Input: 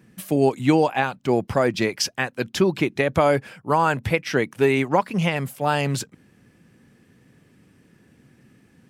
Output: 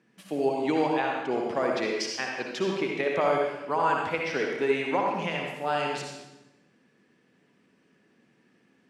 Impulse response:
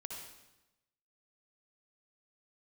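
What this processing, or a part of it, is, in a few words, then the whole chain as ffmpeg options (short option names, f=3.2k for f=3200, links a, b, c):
supermarket ceiling speaker: -filter_complex "[0:a]highpass=270,lowpass=5.9k[a];[1:a]atrim=start_sample=2205[b];[a][b]afir=irnorm=-1:irlink=0,volume=-2.5dB"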